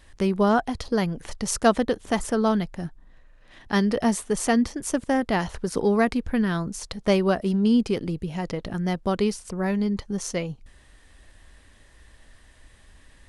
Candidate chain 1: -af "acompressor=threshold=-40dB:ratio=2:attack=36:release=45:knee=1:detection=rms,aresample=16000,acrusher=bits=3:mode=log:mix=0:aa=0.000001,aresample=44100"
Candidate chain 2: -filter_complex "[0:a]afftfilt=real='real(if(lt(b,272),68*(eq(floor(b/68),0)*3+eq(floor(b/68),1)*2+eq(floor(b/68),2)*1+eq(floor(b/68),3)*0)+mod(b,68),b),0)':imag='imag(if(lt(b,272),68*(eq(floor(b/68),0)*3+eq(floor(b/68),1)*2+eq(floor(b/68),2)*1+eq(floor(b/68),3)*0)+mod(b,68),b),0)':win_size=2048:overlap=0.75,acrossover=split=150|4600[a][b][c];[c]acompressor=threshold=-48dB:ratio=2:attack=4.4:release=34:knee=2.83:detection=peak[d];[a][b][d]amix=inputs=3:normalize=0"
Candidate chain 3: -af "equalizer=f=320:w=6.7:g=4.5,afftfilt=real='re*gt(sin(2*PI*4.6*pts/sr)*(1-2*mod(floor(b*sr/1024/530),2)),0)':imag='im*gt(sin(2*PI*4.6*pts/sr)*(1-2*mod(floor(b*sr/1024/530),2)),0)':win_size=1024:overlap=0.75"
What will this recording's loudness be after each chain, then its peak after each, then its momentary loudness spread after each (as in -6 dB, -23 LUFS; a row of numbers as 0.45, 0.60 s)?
-34.0, -25.0, -27.5 LUFS; -15.0, -9.0, -10.0 dBFS; 6, 8, 10 LU